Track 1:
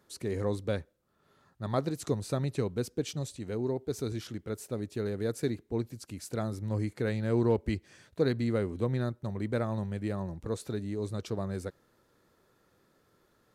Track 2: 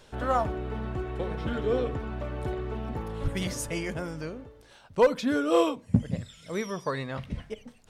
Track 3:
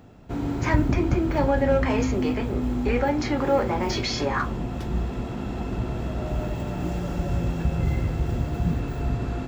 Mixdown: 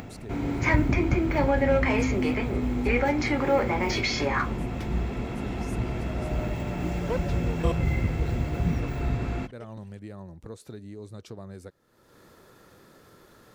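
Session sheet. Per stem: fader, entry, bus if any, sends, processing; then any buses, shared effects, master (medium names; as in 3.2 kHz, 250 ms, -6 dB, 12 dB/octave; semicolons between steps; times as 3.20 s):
-13.0 dB, 0.00 s, no send, none
-6.0 dB, 2.10 s, no send, level held to a coarse grid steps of 21 dB
-1.5 dB, 0.00 s, no send, peaking EQ 2.2 kHz +9.5 dB 0.34 oct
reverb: none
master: upward compressor, threshold -32 dBFS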